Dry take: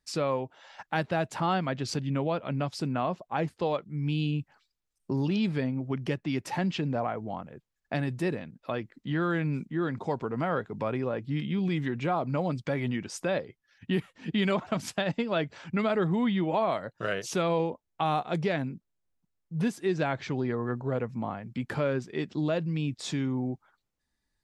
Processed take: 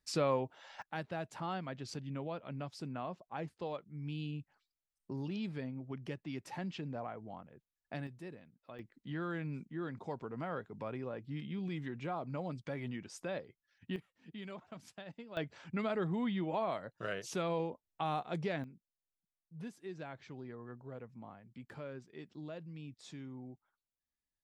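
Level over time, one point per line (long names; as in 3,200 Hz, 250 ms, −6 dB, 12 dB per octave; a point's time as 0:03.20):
−3 dB
from 0:00.82 −12 dB
from 0:08.07 −18.5 dB
from 0:08.79 −11 dB
from 0:13.96 −20 dB
from 0:15.37 −8.5 dB
from 0:18.64 −17.5 dB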